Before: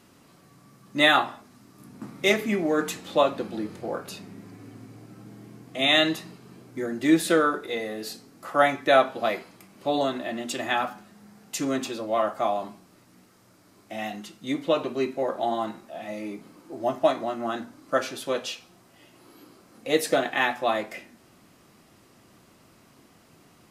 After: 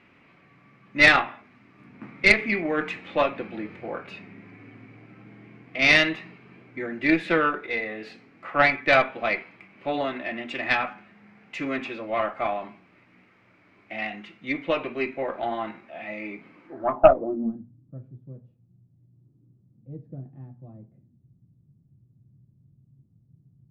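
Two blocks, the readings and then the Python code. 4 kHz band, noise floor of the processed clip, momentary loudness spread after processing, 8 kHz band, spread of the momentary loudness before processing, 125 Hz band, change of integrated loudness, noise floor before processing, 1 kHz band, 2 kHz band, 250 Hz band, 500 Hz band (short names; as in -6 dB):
-3.0 dB, -61 dBFS, 21 LU, n/a, 20 LU, +1.5 dB, +2.0 dB, -57 dBFS, -1.0 dB, +5.5 dB, -2.0 dB, -1.0 dB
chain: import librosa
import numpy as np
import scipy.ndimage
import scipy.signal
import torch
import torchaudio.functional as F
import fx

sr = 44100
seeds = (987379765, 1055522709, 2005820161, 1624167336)

y = fx.filter_sweep_lowpass(x, sr, from_hz=2300.0, to_hz=130.0, start_s=16.65, end_s=17.67, q=4.7)
y = fx.cheby_harmonics(y, sr, harmonics=(4,), levels_db=(-16,), full_scale_db=1.5)
y = y * 10.0 ** (-3.0 / 20.0)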